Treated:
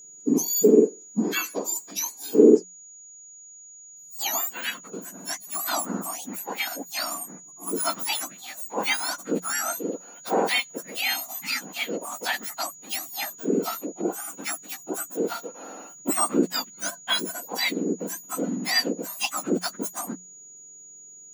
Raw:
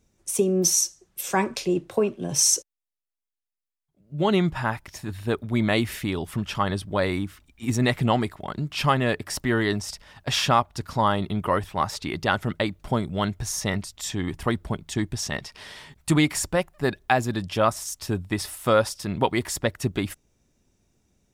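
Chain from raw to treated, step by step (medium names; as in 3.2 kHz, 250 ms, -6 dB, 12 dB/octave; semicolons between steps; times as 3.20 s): spectrum inverted on a logarithmic axis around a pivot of 1.6 kHz; whistle 6.8 kHz -44 dBFS; hum notches 60/120/180 Hz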